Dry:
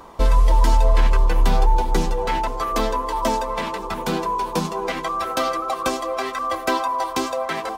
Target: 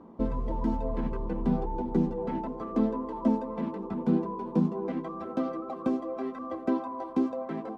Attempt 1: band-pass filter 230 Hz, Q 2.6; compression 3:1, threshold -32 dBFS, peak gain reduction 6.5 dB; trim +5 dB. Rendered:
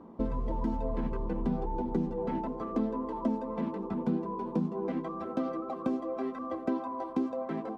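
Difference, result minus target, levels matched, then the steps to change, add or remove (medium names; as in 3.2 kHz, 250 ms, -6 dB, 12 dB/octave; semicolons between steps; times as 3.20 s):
compression: peak gain reduction +6.5 dB
remove: compression 3:1, threshold -32 dBFS, peak gain reduction 6.5 dB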